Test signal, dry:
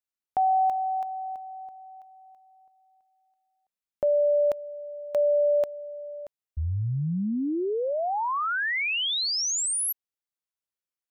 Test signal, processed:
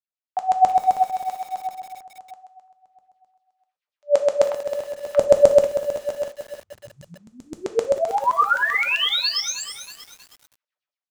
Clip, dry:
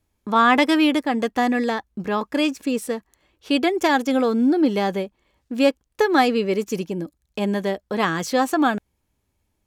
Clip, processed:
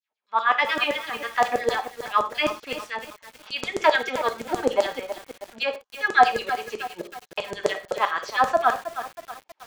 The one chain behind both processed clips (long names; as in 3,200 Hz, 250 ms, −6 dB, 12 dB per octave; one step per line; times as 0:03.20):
high-frequency loss of the air 190 metres
automatic gain control gain up to 15 dB
two-band tremolo in antiphase 9 Hz, depth 70%, crossover 1,000 Hz
auto-filter high-pass saw down 7.7 Hz 490–7,200 Hz
reverb whose tail is shaped and stops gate 140 ms falling, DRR 6.5 dB
feedback echo at a low word length 318 ms, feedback 55%, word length 5 bits, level −11 dB
level −5 dB